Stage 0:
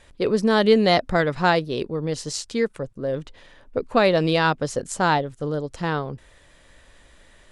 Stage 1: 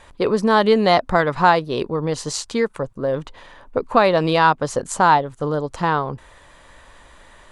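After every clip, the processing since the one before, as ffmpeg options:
ffmpeg -i in.wav -filter_complex "[0:a]equalizer=frequency=1000:width=1.5:gain=10,bandreject=frequency=5300:width=19,asplit=2[link_01][link_02];[link_02]acompressor=threshold=-22dB:ratio=6,volume=1dB[link_03];[link_01][link_03]amix=inputs=2:normalize=0,volume=-3dB" out.wav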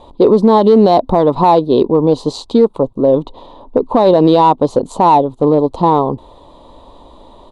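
ffmpeg -i in.wav -filter_complex "[0:a]firequalizer=gain_entry='entry(150,0);entry(260,9);entry(560,4);entry(980,4);entry(1600,-25);entry(3800,1);entry(5400,-15)':delay=0.05:min_phase=1,asplit=2[link_01][link_02];[link_02]asoftclip=type=hard:threshold=-9dB,volume=-9dB[link_03];[link_01][link_03]amix=inputs=2:normalize=0,alimiter=level_in=4.5dB:limit=-1dB:release=50:level=0:latency=1,volume=-1dB" out.wav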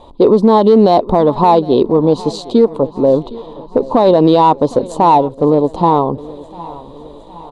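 ffmpeg -i in.wav -af "aecho=1:1:763|1526|2289|3052:0.106|0.0583|0.032|0.0176" out.wav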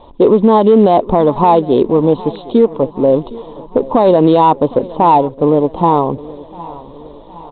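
ffmpeg -i in.wav -filter_complex "[0:a]acrossover=split=2000[link_01][link_02];[link_02]aeval=exprs='(mod(6.31*val(0)+1,2)-1)/6.31':channel_layout=same[link_03];[link_01][link_03]amix=inputs=2:normalize=0" -ar 8000 -c:a pcm_mulaw out.wav

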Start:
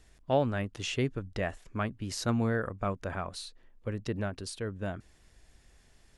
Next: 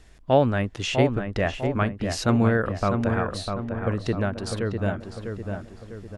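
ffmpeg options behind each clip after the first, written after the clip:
ffmpeg -i in.wav -filter_complex "[0:a]highshelf=frequency=6500:gain=-7,asplit=2[link_01][link_02];[link_02]adelay=650,lowpass=frequency=2100:poles=1,volume=-5.5dB,asplit=2[link_03][link_04];[link_04]adelay=650,lowpass=frequency=2100:poles=1,volume=0.48,asplit=2[link_05][link_06];[link_06]adelay=650,lowpass=frequency=2100:poles=1,volume=0.48,asplit=2[link_07][link_08];[link_08]adelay=650,lowpass=frequency=2100:poles=1,volume=0.48,asplit=2[link_09][link_10];[link_10]adelay=650,lowpass=frequency=2100:poles=1,volume=0.48,asplit=2[link_11][link_12];[link_12]adelay=650,lowpass=frequency=2100:poles=1,volume=0.48[link_13];[link_03][link_05][link_07][link_09][link_11][link_13]amix=inputs=6:normalize=0[link_14];[link_01][link_14]amix=inputs=2:normalize=0,volume=8dB" out.wav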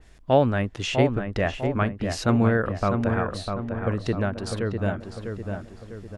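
ffmpeg -i in.wav -af "adynamicequalizer=threshold=0.00891:dfrequency=3200:dqfactor=0.7:tfrequency=3200:tqfactor=0.7:attack=5:release=100:ratio=0.375:range=2:mode=cutabove:tftype=highshelf" out.wav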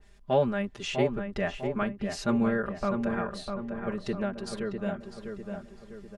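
ffmpeg -i in.wav -af "aecho=1:1:5:1,volume=-8.5dB" out.wav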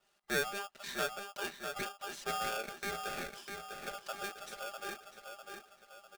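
ffmpeg -i in.wav -af "highpass=230,aeval=exprs='val(0)*sgn(sin(2*PI*1000*n/s))':channel_layout=same,volume=-9dB" out.wav

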